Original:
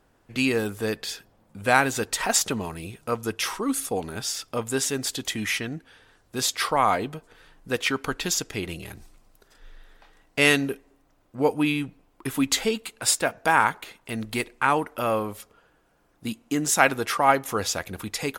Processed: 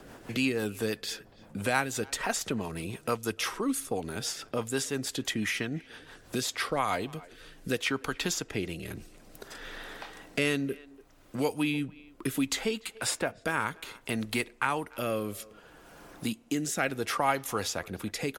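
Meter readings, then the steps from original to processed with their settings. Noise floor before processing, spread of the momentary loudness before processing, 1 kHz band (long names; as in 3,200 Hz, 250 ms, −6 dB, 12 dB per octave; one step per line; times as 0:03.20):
−64 dBFS, 15 LU, −9.0 dB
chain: rotating-speaker cabinet horn 6 Hz, later 0.65 Hz, at 0:06.12
far-end echo of a speakerphone 290 ms, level −26 dB
multiband upward and downward compressor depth 70%
level −3 dB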